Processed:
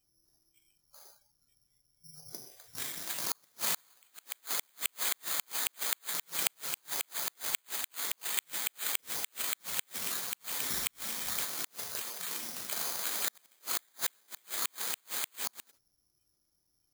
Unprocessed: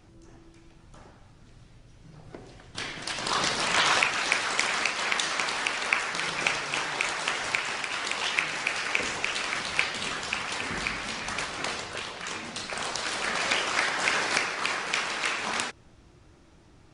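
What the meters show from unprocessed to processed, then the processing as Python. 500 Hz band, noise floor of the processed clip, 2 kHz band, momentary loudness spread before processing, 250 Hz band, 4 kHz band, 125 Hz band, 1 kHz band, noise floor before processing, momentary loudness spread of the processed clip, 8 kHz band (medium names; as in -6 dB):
-14.5 dB, -76 dBFS, -16.0 dB, 10 LU, -13.5 dB, -9.5 dB, -14.5 dB, -15.0 dB, -55 dBFS, 7 LU, -1.0 dB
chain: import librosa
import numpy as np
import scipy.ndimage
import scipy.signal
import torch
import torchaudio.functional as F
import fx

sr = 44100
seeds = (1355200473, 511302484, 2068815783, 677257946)

y = fx.noise_reduce_blind(x, sr, reduce_db=20)
y = (np.kron(scipy.signal.resample_poly(y, 1, 8), np.eye(8)[0]) * 8)[:len(y)]
y = fx.gate_flip(y, sr, shuts_db=-1.0, range_db=-38)
y = y * librosa.db_to_amplitude(-10.0)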